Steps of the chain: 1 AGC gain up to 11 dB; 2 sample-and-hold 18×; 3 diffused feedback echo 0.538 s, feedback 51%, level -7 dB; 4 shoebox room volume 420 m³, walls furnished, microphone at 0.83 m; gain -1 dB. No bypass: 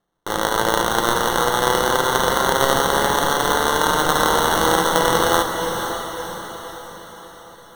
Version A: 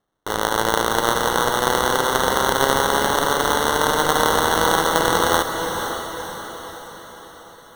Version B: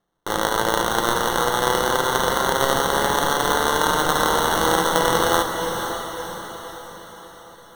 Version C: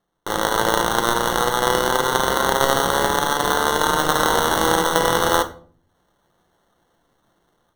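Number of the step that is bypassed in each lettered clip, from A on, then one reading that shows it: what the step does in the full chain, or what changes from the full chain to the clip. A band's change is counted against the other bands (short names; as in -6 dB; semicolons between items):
4, echo-to-direct -3.0 dB to -5.5 dB; 1, loudness change -2.0 LU; 3, echo-to-direct -3.0 dB to -8.0 dB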